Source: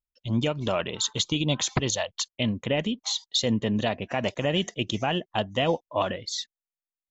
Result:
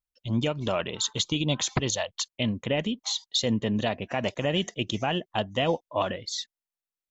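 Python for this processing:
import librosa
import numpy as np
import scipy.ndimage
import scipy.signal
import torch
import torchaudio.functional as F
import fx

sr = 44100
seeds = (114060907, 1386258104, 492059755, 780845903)

y = F.gain(torch.from_numpy(x), -1.0).numpy()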